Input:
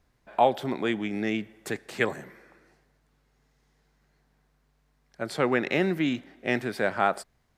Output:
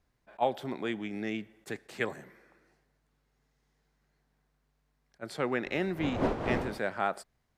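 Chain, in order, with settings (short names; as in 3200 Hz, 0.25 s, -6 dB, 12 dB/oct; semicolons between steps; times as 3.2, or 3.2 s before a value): 5.63–6.78 wind noise 600 Hz -25 dBFS; attack slew limiter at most 590 dB/s; gain -6.5 dB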